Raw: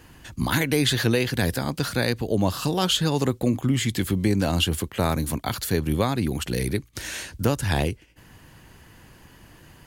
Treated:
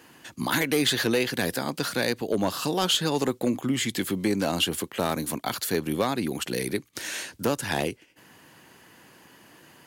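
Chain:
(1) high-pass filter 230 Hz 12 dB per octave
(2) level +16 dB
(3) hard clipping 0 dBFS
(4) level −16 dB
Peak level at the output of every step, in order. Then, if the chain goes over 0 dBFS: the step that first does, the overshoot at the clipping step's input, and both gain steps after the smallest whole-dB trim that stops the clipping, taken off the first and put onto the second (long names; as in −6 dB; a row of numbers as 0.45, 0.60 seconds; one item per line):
−8.0, +8.0, 0.0, −16.0 dBFS
step 2, 8.0 dB
step 2 +8 dB, step 4 −8 dB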